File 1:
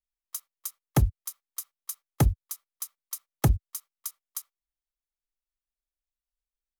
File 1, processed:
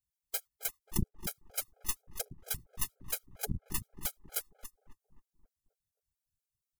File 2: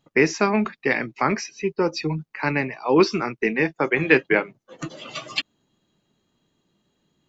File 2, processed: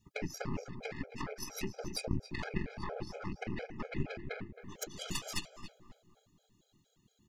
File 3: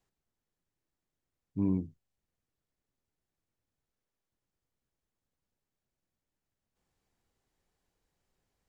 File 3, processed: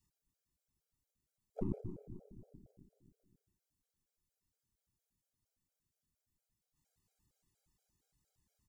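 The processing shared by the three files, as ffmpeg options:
-filter_complex "[0:a]acrossover=split=220[a][b];[b]acompressor=threshold=-31dB:ratio=6[c];[a][c]amix=inputs=2:normalize=0,afftfilt=real='hypot(re,im)*cos(2*PI*random(0))':imag='hypot(re,im)*sin(2*PI*random(1))':win_size=512:overlap=0.75,adynamicequalizer=threshold=0.00794:dfrequency=1000:dqfactor=2.2:tfrequency=1000:tqfactor=2.2:attack=5:release=100:ratio=0.375:range=2:mode=boostabove:tftype=bell,acompressor=threshold=-39dB:ratio=12,bass=f=250:g=7,treble=f=4k:g=12,asplit=2[d][e];[e]aecho=0:1:285:0.168[f];[d][f]amix=inputs=2:normalize=0,aeval=exprs='0.141*(cos(1*acos(clip(val(0)/0.141,-1,1)))-cos(1*PI/2))+0.00794*(cos(2*acos(clip(val(0)/0.141,-1,1)))-cos(2*PI/2))+0.0224*(cos(5*acos(clip(val(0)/0.141,-1,1)))-cos(5*PI/2))+0.00631*(cos(7*acos(clip(val(0)/0.141,-1,1)))-cos(7*PI/2))+0.0501*(cos(8*acos(clip(val(0)/0.141,-1,1)))-cos(8*PI/2))':c=same,asplit=2[g][h];[h]adelay=268,lowpass=f=1.1k:p=1,volume=-10dB,asplit=2[i][j];[j]adelay=268,lowpass=f=1.1k:p=1,volume=0.54,asplit=2[k][l];[l]adelay=268,lowpass=f=1.1k:p=1,volume=0.54,asplit=2[m][n];[n]adelay=268,lowpass=f=1.1k:p=1,volume=0.54,asplit=2[o][p];[p]adelay=268,lowpass=f=1.1k:p=1,volume=0.54,asplit=2[q][r];[r]adelay=268,lowpass=f=1.1k:p=1,volume=0.54[s];[i][k][m][o][q][s]amix=inputs=6:normalize=0[t];[g][t]amix=inputs=2:normalize=0,afftfilt=real='re*gt(sin(2*PI*4.3*pts/sr)*(1-2*mod(floor(b*sr/1024/420),2)),0)':imag='im*gt(sin(2*PI*4.3*pts/sr)*(1-2*mod(floor(b*sr/1024/420),2)),0)':win_size=1024:overlap=0.75,volume=-2dB"

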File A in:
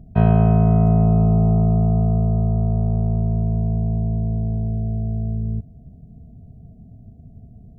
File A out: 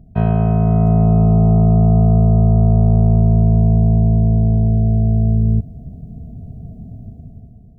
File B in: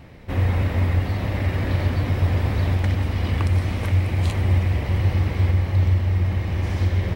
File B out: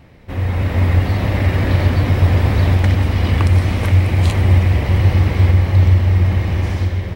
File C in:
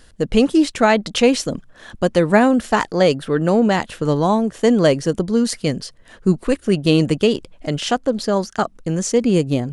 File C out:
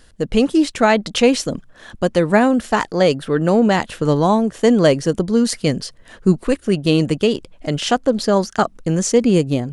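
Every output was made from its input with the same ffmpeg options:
-af "dynaudnorm=f=190:g=7:m=11dB,volume=-1dB"

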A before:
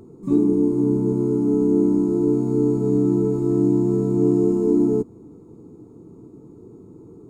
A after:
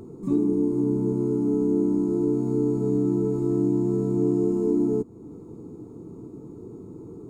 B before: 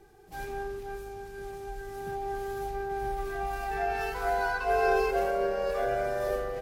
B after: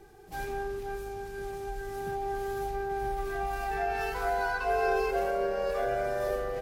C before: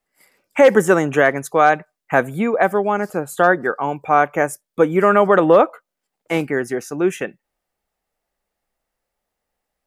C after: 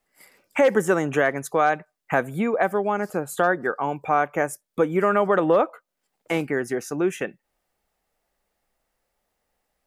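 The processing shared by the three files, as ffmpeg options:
-af "acompressor=threshold=-36dB:ratio=1.5,volume=3dB"

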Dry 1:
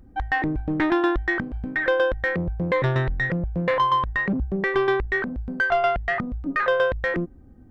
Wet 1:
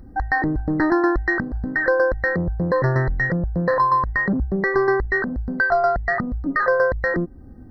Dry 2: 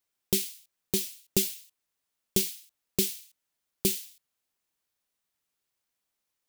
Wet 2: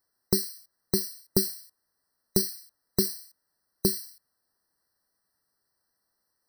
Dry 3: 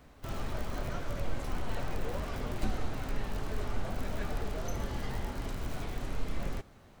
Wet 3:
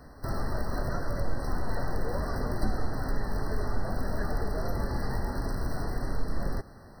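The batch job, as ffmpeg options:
-filter_complex "[0:a]asplit=2[a][b];[b]acompressor=threshold=-35dB:ratio=8,volume=-0.5dB[c];[a][c]amix=inputs=2:normalize=0,afftfilt=real='re*eq(mod(floor(b*sr/1024/2000),2),0)':imag='im*eq(mod(floor(b*sr/1024/2000),2),0)':win_size=1024:overlap=0.75,volume=1.5dB"

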